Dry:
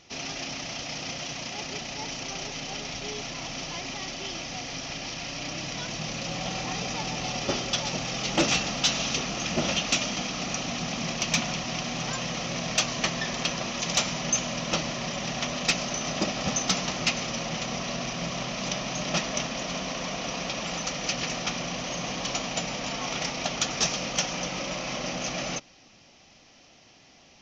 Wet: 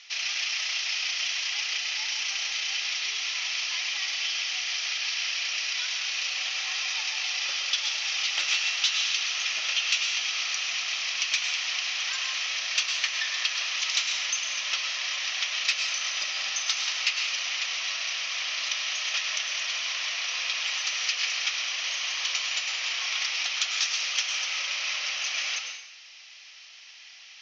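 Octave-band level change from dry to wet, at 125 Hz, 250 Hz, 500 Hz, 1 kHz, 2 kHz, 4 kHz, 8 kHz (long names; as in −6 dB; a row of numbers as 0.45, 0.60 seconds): below −40 dB, below −30 dB, −18.5 dB, −7.5 dB, +5.0 dB, +4.5 dB, 0.0 dB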